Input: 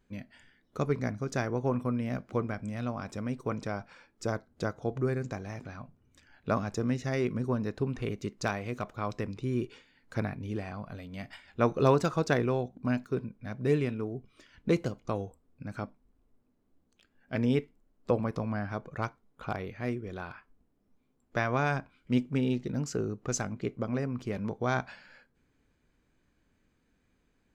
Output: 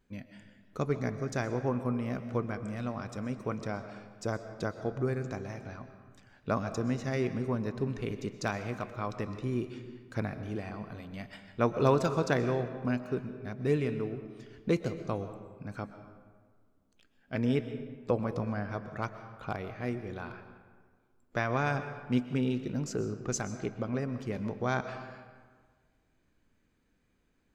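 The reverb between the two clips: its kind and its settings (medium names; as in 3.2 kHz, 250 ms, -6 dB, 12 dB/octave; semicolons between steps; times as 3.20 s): algorithmic reverb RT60 1.6 s, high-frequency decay 0.6×, pre-delay 85 ms, DRR 10 dB; trim -1.5 dB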